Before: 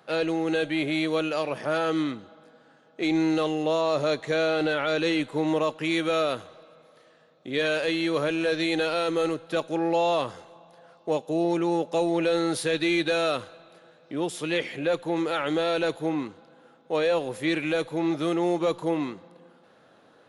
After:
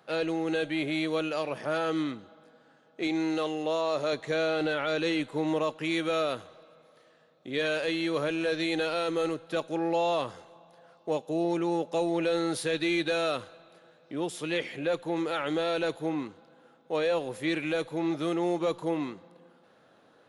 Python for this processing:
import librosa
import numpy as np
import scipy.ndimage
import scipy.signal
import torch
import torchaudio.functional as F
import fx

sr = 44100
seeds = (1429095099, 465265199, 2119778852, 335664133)

y = fx.low_shelf(x, sr, hz=150.0, db=-11.0, at=(3.07, 4.13))
y = y * librosa.db_to_amplitude(-3.5)